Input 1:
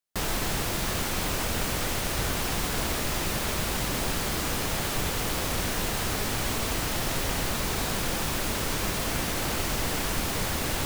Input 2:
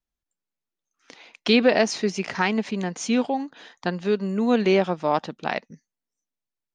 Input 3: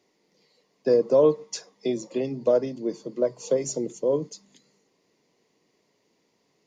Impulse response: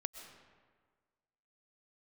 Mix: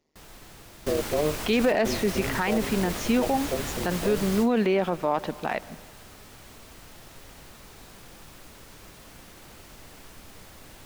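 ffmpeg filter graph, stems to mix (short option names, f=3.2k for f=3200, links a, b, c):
-filter_complex "[0:a]volume=-6dB,asplit=2[a][b];[b]volume=-15dB[c];[1:a]bass=f=250:g=-3,treble=f=4k:g=-12,volume=10.5dB,asoftclip=hard,volume=-10.5dB,volume=2dB,asplit=2[d][e];[e]volume=-14.5dB[f];[2:a]lowshelf=f=240:g=8,tremolo=f=150:d=0.974,volume=-4dB,asplit=2[g][h];[h]apad=whole_len=478877[i];[a][i]sidechaingate=range=-23dB:threshold=-55dB:ratio=16:detection=peak[j];[3:a]atrim=start_sample=2205[k];[c][f]amix=inputs=2:normalize=0[l];[l][k]afir=irnorm=-1:irlink=0[m];[j][d][g][m]amix=inputs=4:normalize=0,alimiter=limit=-14.5dB:level=0:latency=1:release=26"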